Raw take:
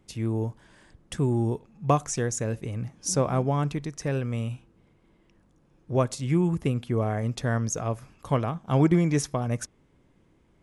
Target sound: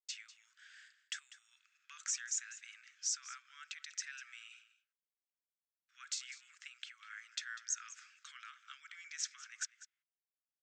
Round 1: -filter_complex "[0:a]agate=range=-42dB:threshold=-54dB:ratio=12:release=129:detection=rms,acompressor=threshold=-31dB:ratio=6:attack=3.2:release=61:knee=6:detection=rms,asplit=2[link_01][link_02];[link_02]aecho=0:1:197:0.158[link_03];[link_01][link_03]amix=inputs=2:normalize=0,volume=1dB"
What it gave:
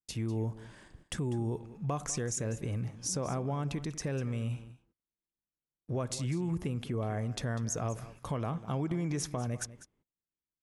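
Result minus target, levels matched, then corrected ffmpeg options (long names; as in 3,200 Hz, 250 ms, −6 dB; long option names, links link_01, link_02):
4,000 Hz band −7.5 dB
-filter_complex "[0:a]agate=range=-42dB:threshold=-54dB:ratio=12:release=129:detection=rms,acompressor=threshold=-31dB:ratio=6:attack=3.2:release=61:knee=6:detection=rms,asuperpass=centerf=3400:order=20:qfactor=0.52,asplit=2[link_01][link_02];[link_02]aecho=0:1:197:0.158[link_03];[link_01][link_03]amix=inputs=2:normalize=0,volume=1dB"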